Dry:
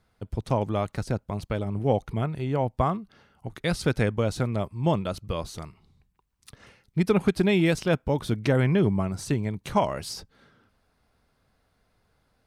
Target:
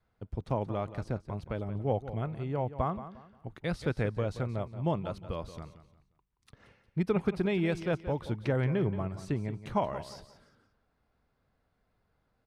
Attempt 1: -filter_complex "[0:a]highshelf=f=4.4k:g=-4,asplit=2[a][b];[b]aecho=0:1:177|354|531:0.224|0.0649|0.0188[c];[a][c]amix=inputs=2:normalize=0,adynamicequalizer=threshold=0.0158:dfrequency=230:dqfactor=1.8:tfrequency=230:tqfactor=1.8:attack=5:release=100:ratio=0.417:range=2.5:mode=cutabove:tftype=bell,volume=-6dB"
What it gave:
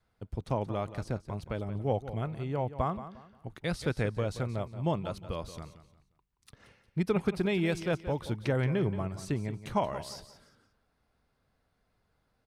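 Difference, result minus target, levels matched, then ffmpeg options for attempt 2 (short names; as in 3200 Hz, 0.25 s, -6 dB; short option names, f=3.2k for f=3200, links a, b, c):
8000 Hz band +7.0 dB
-filter_complex "[0:a]highshelf=f=4.4k:g=-14,asplit=2[a][b];[b]aecho=0:1:177|354|531:0.224|0.0649|0.0188[c];[a][c]amix=inputs=2:normalize=0,adynamicequalizer=threshold=0.0158:dfrequency=230:dqfactor=1.8:tfrequency=230:tqfactor=1.8:attack=5:release=100:ratio=0.417:range=2.5:mode=cutabove:tftype=bell,volume=-6dB"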